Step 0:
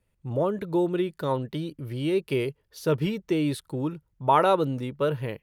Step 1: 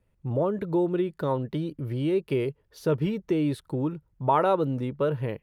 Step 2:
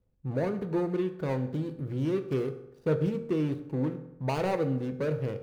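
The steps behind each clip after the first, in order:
high-shelf EQ 2,300 Hz −10 dB; in parallel at +1.5 dB: downward compressor, threshold −31 dBFS, peak gain reduction 14 dB; on the sum: level −3 dB
running median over 41 samples; convolution reverb RT60 0.85 s, pre-delay 3 ms, DRR 7 dB; level −3 dB

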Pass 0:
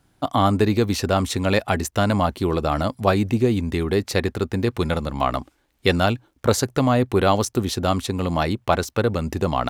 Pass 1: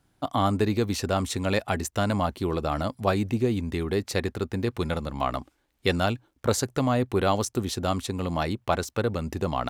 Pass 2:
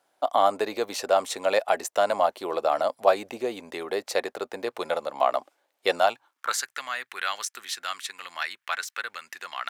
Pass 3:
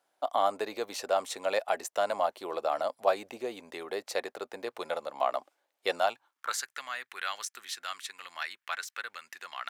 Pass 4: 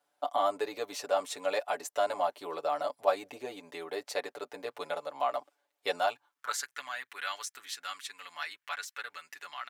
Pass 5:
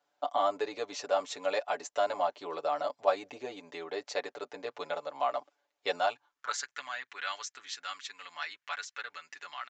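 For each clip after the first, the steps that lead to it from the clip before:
dynamic equaliser 7,800 Hz, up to +3 dB, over −42 dBFS, Q 1.7; level −5.5 dB
high-pass filter sweep 600 Hz → 1,700 Hz, 0:05.95–0:06.63
low-shelf EQ 360 Hz −3 dB; level −5.5 dB
comb filter 6.9 ms, depth 90%; level −4 dB
downsampling to 16,000 Hz

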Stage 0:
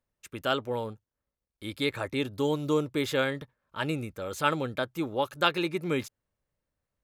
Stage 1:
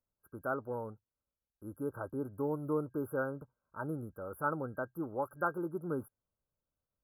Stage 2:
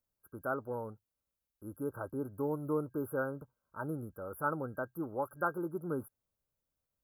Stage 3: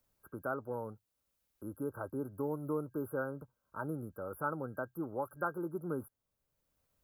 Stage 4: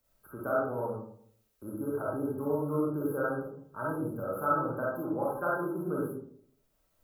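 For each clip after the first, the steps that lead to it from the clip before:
brick-wall band-stop 1,600–10,000 Hz; level −7 dB
high-shelf EQ 11,000 Hz +7.5 dB
multiband upward and downward compressor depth 40%; level −1.5 dB
comb and all-pass reverb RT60 0.62 s, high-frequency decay 0.35×, pre-delay 5 ms, DRR −5.5 dB

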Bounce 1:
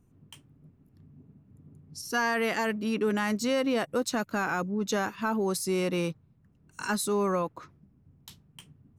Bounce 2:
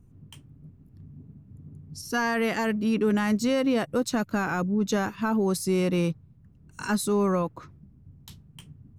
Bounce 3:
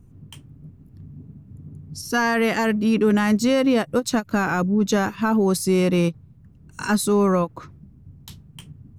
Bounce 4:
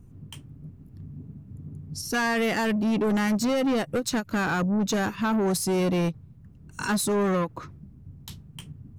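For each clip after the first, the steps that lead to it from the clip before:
low-shelf EQ 200 Hz +12 dB
every ending faded ahead of time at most 480 dB per second; level +5.5 dB
soft clipping −20.5 dBFS, distortion −10 dB

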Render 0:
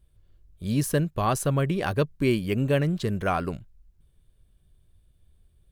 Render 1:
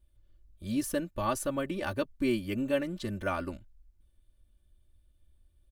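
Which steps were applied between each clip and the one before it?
comb filter 3.4 ms, depth 88%
level −8 dB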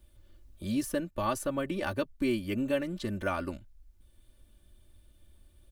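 multiband upward and downward compressor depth 40%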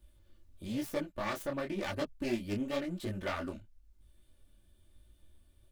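phase distortion by the signal itself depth 0.32 ms
micro pitch shift up and down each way 34 cents

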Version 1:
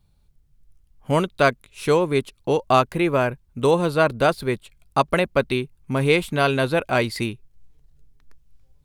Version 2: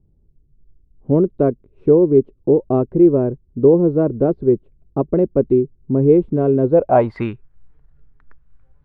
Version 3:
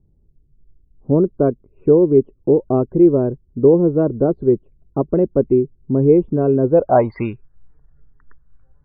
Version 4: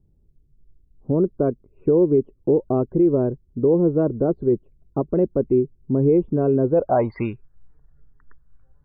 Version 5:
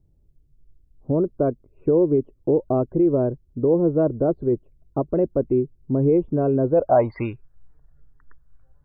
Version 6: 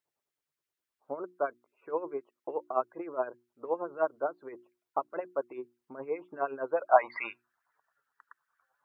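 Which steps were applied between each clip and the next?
low-pass filter sweep 370 Hz → 1,500 Hz, 0:06.64–0:07.29; level +3.5 dB
spectral peaks only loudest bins 64
brickwall limiter −7.5 dBFS, peak gain reduction 5 dB; level −2.5 dB
thirty-one-band graphic EQ 200 Hz −7 dB, 400 Hz −3 dB, 630 Hz +4 dB
auto-filter high-pass sine 9.6 Hz 950–1,900 Hz; mains-hum notches 60/120/180/240/300/360 Hz

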